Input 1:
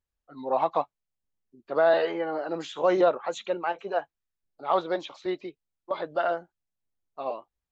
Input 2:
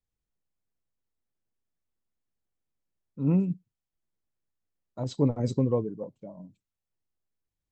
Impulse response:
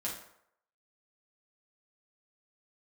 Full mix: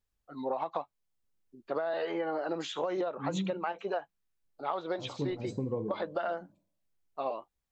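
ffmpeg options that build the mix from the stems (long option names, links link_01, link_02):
-filter_complex "[0:a]acompressor=threshold=-25dB:ratio=6,volume=1dB,asplit=2[link_01][link_02];[1:a]bandreject=frequency=620:width=12,flanger=delay=9.6:depth=5.5:regen=71:speed=1.8:shape=sinusoidal,volume=1.5dB,asplit=2[link_03][link_04];[link_04]volume=-13.5dB[link_05];[link_02]apad=whole_len=340218[link_06];[link_03][link_06]sidechaincompress=threshold=-35dB:ratio=8:attack=16:release=713[link_07];[2:a]atrim=start_sample=2205[link_08];[link_05][link_08]afir=irnorm=-1:irlink=0[link_09];[link_01][link_07][link_09]amix=inputs=3:normalize=0,acompressor=threshold=-29dB:ratio=6"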